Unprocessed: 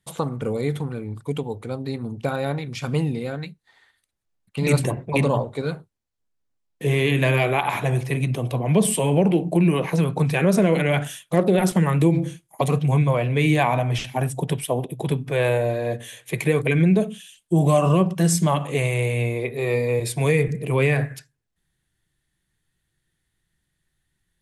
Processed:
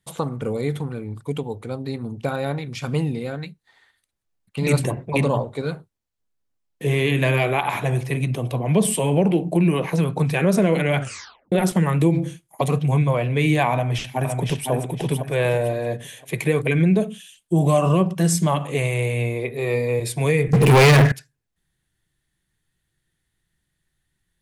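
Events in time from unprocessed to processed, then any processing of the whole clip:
0:11.00: tape stop 0.52 s
0:13.73–0:14.71: delay throw 510 ms, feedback 35%, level −5 dB
0:20.53–0:21.12: leveller curve on the samples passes 5

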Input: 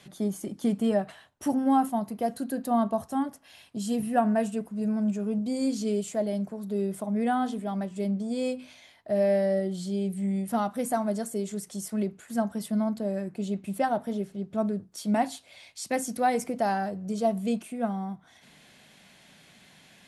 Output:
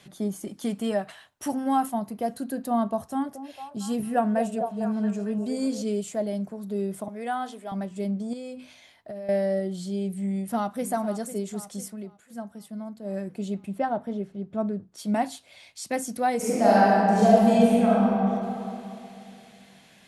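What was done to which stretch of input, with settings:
0:00.47–0:01.94: tilt shelving filter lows −4 dB, about 700 Hz
0:03.03–0:05.82: echo through a band-pass that steps 226 ms, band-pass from 470 Hz, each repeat 0.7 octaves, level −3 dB
0:07.08–0:07.72: Bessel high-pass filter 520 Hz
0:08.33–0:09.29: downward compressor 12 to 1, threshold −33 dBFS
0:10.31–0:10.88: delay throw 500 ms, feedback 55%, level −12.5 dB
0:11.84–0:13.14: duck −9.5 dB, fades 0.12 s
0:13.65–0:14.98: low-pass filter 1,800 Hz → 3,200 Hz 6 dB per octave
0:16.36–0:18.12: thrown reverb, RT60 2.7 s, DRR −9.5 dB

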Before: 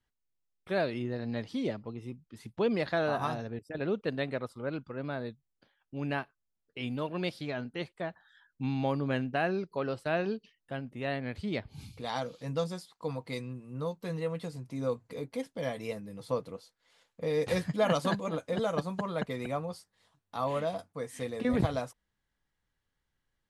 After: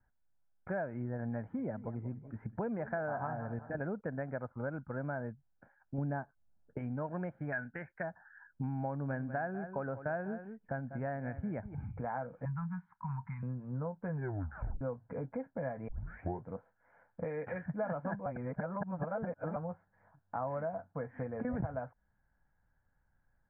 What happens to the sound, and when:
0:01.40–0:03.76: feedback echo with a swinging delay time 188 ms, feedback 34%, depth 173 cents, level −17 dB
0:05.98–0:06.79: tilt shelving filter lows +7.5 dB, about 1,300 Hz
0:07.52–0:08.03: flat-topped bell 2,100 Hz +14 dB 1.2 octaves
0:08.91–0:11.75: single-tap delay 195 ms −15 dB
0:12.45–0:13.43: elliptic band-stop filter 200–950 Hz
0:14.11: tape stop 0.70 s
0:15.88: tape start 0.61 s
0:17.24–0:17.66: meter weighting curve D
0:18.26–0:19.56: reverse
whole clip: comb filter 1.3 ms, depth 51%; downward compressor 4 to 1, threshold −41 dBFS; Butterworth low-pass 1,800 Hz 48 dB per octave; level +5 dB

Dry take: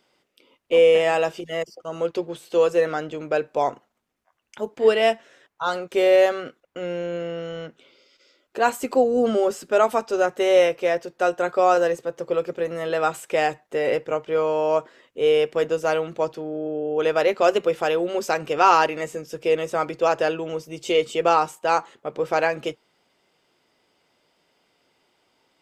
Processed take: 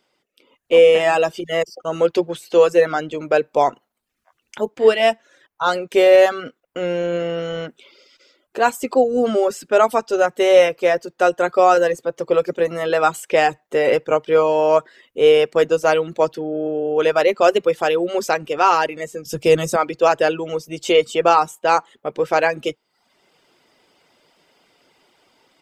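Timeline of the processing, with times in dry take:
0:19.25–0:19.76: bass and treble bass +13 dB, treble +10 dB
whole clip: reverb reduction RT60 0.54 s; parametric band 75 Hz −3 dB 1.7 octaves; automatic gain control gain up to 10 dB; level −1 dB

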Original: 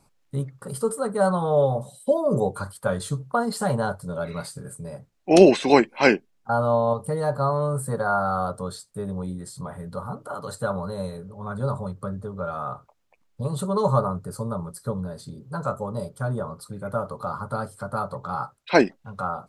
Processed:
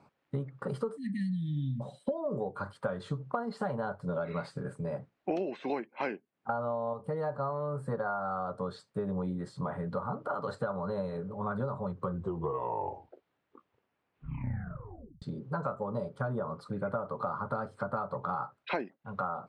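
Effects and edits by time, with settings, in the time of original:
0:00.97–0:01.81: time-frequency box erased 320–1,700 Hz
0:11.86: tape stop 3.36 s
whole clip: Bessel high-pass filter 160 Hz; downward compressor 20 to 1, threshold −33 dBFS; low-pass filter 2,400 Hz 12 dB per octave; level +3.5 dB

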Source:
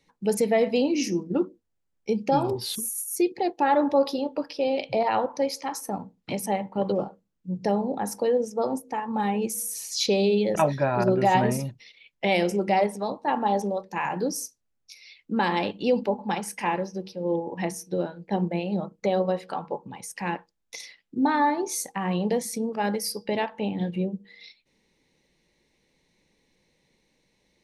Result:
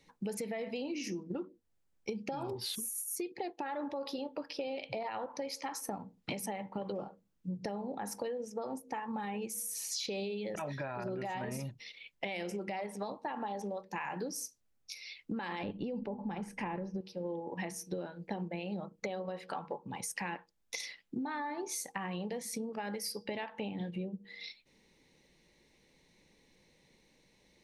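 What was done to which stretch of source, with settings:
0:15.63–0:17.01: spectral tilt −4 dB per octave
whole clip: dynamic equaliser 2,100 Hz, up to +6 dB, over −42 dBFS, Q 0.7; brickwall limiter −17 dBFS; downward compressor 10 to 1, threshold −37 dBFS; level +1.5 dB

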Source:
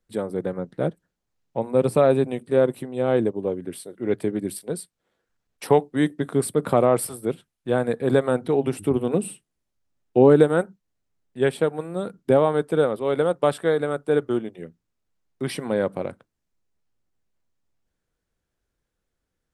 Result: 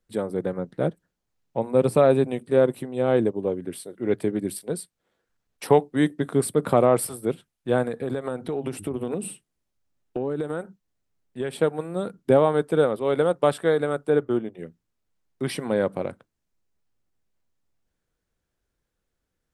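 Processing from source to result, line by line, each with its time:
0:07.85–0:11.55: downward compressor 12 to 1, threshold −23 dBFS
0:14.10–0:14.59: parametric band 8,400 Hz −7.5 dB 2.8 octaves

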